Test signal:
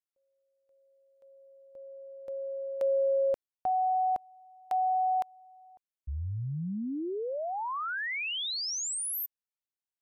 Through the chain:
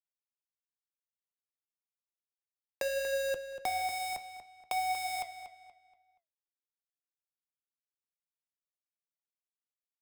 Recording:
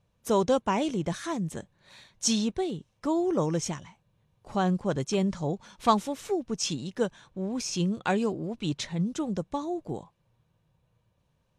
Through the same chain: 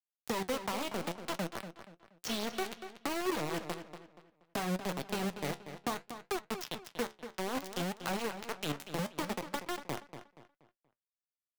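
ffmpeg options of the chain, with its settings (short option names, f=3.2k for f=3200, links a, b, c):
-filter_complex "[0:a]asplit=2[a][b];[b]asoftclip=type=hard:threshold=-20.5dB,volume=-10.5dB[c];[a][c]amix=inputs=2:normalize=0,acompressor=threshold=-32dB:ratio=2:attack=0.29:release=811:detection=rms,equalizer=f=7.9k:t=o:w=0.36:g=-13,acrusher=bits=4:mix=0:aa=0.000001,acrossover=split=130|4100[d][e][f];[d]acompressor=threshold=-53dB:ratio=4[g];[e]acompressor=threshold=-34dB:ratio=4[h];[f]acompressor=threshold=-45dB:ratio=4[i];[g][h][i]amix=inputs=3:normalize=0,flanger=delay=5.2:depth=9.3:regen=67:speed=0.62:shape=sinusoidal,asplit=2[j][k];[k]adelay=238,lowpass=f=4.8k:p=1,volume=-10dB,asplit=2[l][m];[m]adelay=238,lowpass=f=4.8k:p=1,volume=0.35,asplit=2[n][o];[o]adelay=238,lowpass=f=4.8k:p=1,volume=0.35,asplit=2[p][q];[q]adelay=238,lowpass=f=4.8k:p=1,volume=0.35[r];[l][n][p][r]amix=inputs=4:normalize=0[s];[j][s]amix=inputs=2:normalize=0,volume=5.5dB"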